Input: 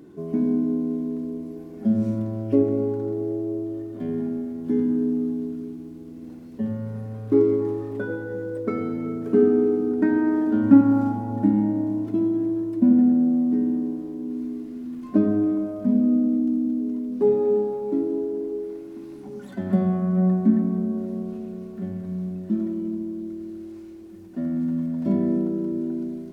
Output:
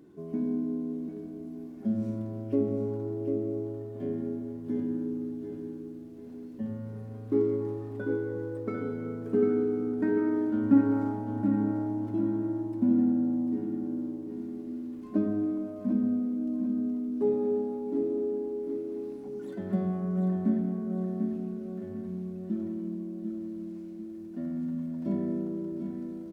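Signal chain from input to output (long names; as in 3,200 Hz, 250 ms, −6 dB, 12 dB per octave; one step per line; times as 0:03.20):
repeating echo 745 ms, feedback 44%, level −7 dB
level −8 dB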